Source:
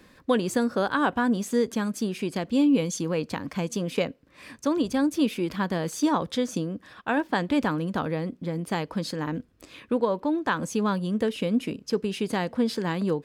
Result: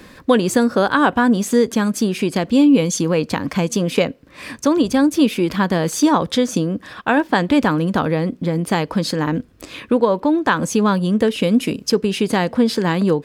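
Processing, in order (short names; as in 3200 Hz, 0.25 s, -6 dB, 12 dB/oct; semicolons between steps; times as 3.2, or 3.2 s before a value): 11.43–11.92 high shelf 4600 Hz +7 dB; in parallel at -1.5 dB: compressor, threshold -32 dBFS, peak gain reduction 14 dB; on the sum: gain +7 dB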